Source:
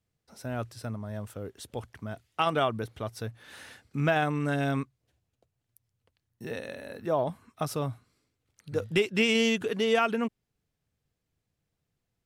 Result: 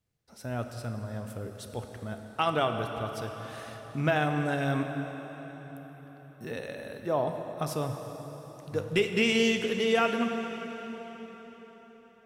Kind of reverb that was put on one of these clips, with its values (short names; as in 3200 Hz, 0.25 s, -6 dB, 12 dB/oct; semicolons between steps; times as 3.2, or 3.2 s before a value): plate-style reverb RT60 4.9 s, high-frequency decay 0.8×, DRR 5 dB; gain -1 dB